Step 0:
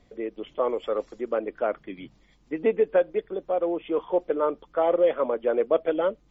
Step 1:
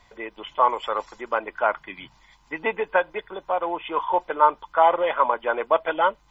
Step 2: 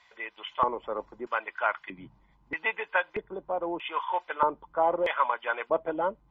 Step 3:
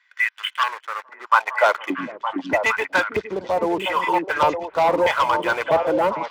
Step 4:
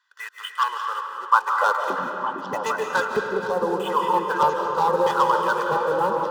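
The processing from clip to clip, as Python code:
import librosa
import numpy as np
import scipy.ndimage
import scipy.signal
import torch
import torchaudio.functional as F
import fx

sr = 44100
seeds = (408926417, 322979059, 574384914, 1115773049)

y1 = fx.low_shelf_res(x, sr, hz=650.0, db=-9.5, q=3.0)
y1 = y1 + 0.39 * np.pad(y1, (int(2.0 * sr / 1000.0), 0))[:len(y1)]
y1 = y1 * 10.0 ** (8.0 / 20.0)
y2 = fx.low_shelf(y1, sr, hz=110.0, db=11.5)
y2 = fx.filter_lfo_bandpass(y2, sr, shape='square', hz=0.79, low_hz=240.0, high_hz=2400.0, q=0.79)
y3 = fx.leveller(y2, sr, passes=3)
y3 = fx.filter_sweep_highpass(y3, sr, from_hz=1600.0, to_hz=83.0, start_s=1.11, end_s=2.52, q=3.7)
y3 = fx.echo_stepped(y3, sr, ms=457, hz=250.0, octaves=1.4, feedback_pct=70, wet_db=-0.5)
y3 = y3 * 10.0 ** (-1.0 / 20.0)
y4 = fx.reverse_delay(y3, sr, ms=357, wet_db=-13)
y4 = fx.fixed_phaser(y4, sr, hz=440.0, stages=8)
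y4 = fx.rev_freeverb(y4, sr, rt60_s=2.5, hf_ratio=0.6, predelay_ms=115, drr_db=3.5)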